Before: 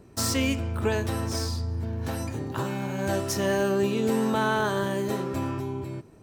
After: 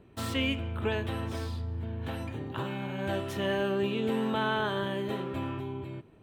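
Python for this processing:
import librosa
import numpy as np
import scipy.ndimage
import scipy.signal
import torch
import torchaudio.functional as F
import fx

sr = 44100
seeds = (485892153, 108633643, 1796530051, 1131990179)

y = fx.high_shelf_res(x, sr, hz=4200.0, db=-8.5, q=3.0)
y = F.gain(torch.from_numpy(y), -5.0).numpy()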